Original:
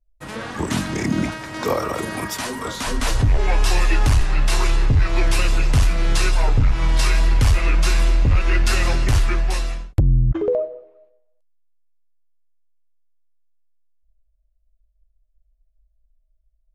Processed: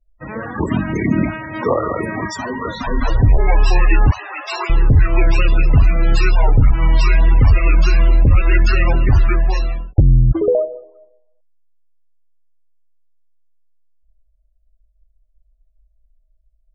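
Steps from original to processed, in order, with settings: 4.11–4.7 HPF 480 Hz 12 dB/oct; loudest bins only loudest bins 32; gain +5 dB

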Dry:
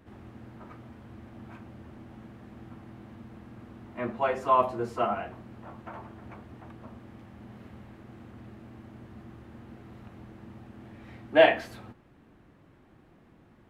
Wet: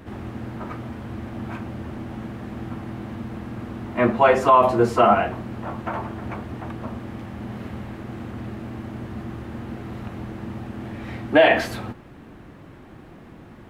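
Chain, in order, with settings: maximiser +18.5 dB; gain -4.5 dB

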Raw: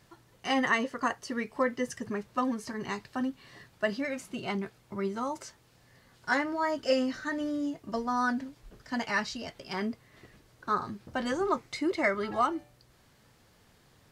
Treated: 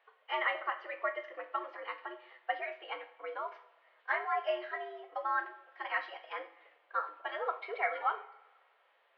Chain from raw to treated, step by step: two-slope reverb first 0.66 s, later 2.4 s, from -18 dB, DRR 5 dB; mistuned SSB +100 Hz 440–3100 Hz; time stretch by phase-locked vocoder 0.65×; gain -3.5 dB

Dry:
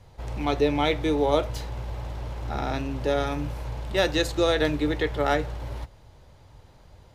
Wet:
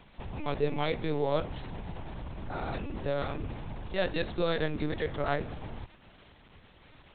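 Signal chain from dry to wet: crackle 490/s -35 dBFS; LPC vocoder at 8 kHz pitch kept; gain -6.5 dB

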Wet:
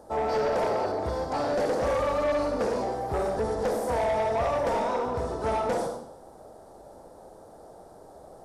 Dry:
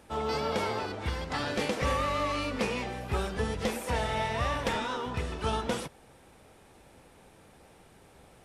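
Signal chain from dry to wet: EQ curve 180 Hz 0 dB, 680 Hz +12 dB, 1600 Hz -4 dB, 2500 Hz -20 dB, 4600 Hz -1 dB; reverb RT60 0.70 s, pre-delay 15 ms, DRR 3 dB; soft clip -21.5 dBFS, distortion -12 dB

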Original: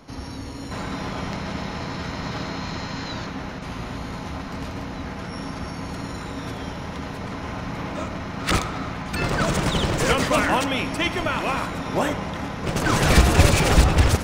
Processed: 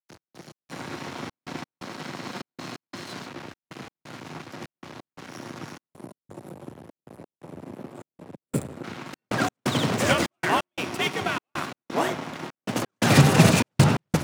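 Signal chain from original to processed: on a send at -16 dB: reverb RT60 1.7 s, pre-delay 4 ms; on the sum: spectral gain 5.94–8.84, 580–7100 Hz -16 dB; crossover distortion -31.5 dBFS; frequency shift +81 Hz; step gate "xx..xx..xxxxx" 174 bpm -60 dB

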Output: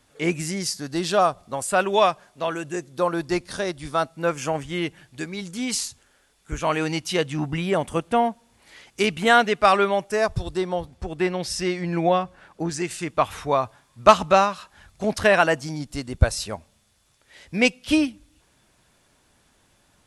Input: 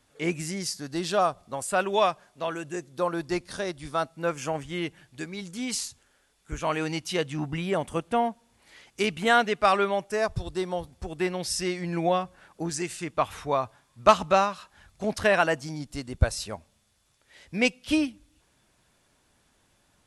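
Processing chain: 10.57–12.91 high shelf 7000 Hz -9.5 dB; gain +4.5 dB

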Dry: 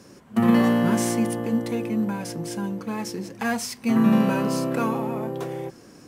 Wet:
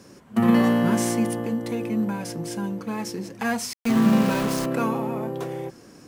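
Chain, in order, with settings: 1.39–1.81 compressor, threshold -22 dBFS, peak gain reduction 4.5 dB; 3.73–4.66 sample gate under -26 dBFS

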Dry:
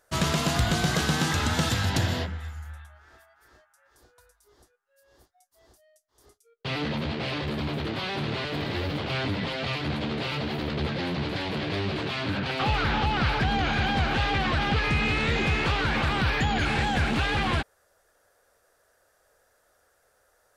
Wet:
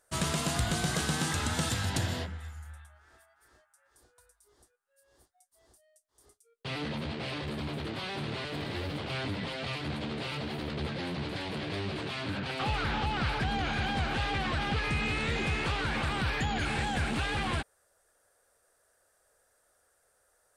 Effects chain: bell 8900 Hz +10.5 dB 0.48 oct; gain -6 dB

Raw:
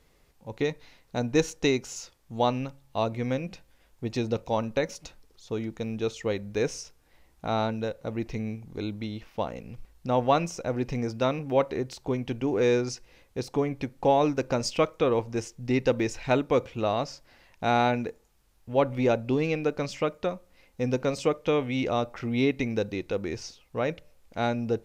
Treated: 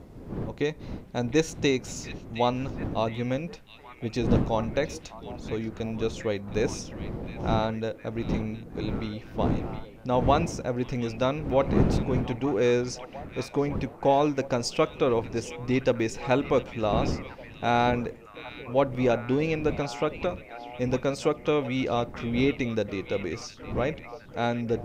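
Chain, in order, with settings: wind noise 260 Hz -35 dBFS; delay with a stepping band-pass 0.715 s, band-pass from 2700 Hz, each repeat -0.7 oct, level -8 dB

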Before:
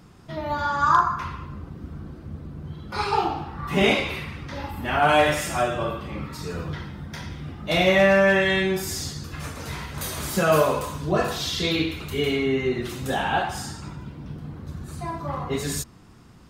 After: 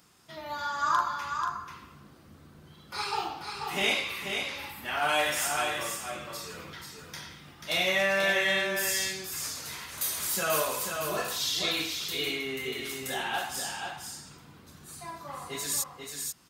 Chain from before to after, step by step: tilt +3.5 dB/oct; echo 0.487 s -5.5 dB; gain -8.5 dB

